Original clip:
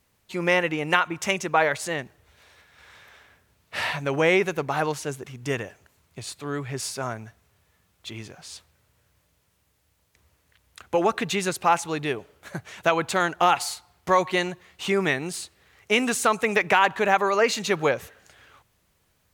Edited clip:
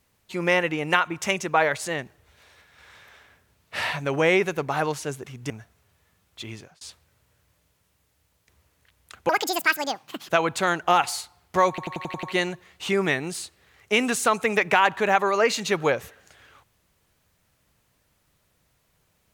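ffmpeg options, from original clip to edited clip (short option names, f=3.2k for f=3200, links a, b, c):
-filter_complex "[0:a]asplit=11[a][b][c][d][e][f][g][h][i][j][k];[a]atrim=end=5.502[l];[b]atrim=start=7.168:end=8.48,asetpts=PTS-STARTPTS,afade=t=out:st=0.972:d=0.34:c=qsin[m];[c]atrim=start=8.48:end=10.964,asetpts=PTS-STARTPTS,afade=t=in:d=0.004:c=hsin[n];[d]atrim=start=10.96:end=12.82,asetpts=PTS-STARTPTS,asetrate=82026,aresample=44100[o];[e]atrim=start=12.816:end=14.312[p];[f]atrim=start=14.218:end=14.312[q];[g]atrim=start=14.218:end=14.312[r];[h]atrim=start=14.218:end=14.312[s];[i]atrim=start=14.218:end=14.312[t];[j]atrim=start=14.218:end=14.312[u];[k]atrim=start=14.218[v];[m][n]concat=n=2:v=0:a=1[w];[l][w]acrossfade=d=0.004:c1=hsin:c2=hsin[x];[x][o]acrossfade=d=0.004:c1=hsin:c2=hsin[y];[y][p]acrossfade=d=0.004:c1=hsin:c2=hsin[z];[z][q]acrossfade=d=0.004:c1=hsin:c2=hsin[aa];[aa][r]acrossfade=d=0.004:c1=hsin:c2=hsin[ab];[ab][s]acrossfade=d=0.004:c1=hsin:c2=hsin[ac];[ac][t]acrossfade=d=0.004:c1=hsin:c2=hsin[ad];[ad][u]acrossfade=d=0.004:c1=hsin:c2=hsin[ae];[ae][v]acrossfade=d=0.004:c1=hsin:c2=hsin"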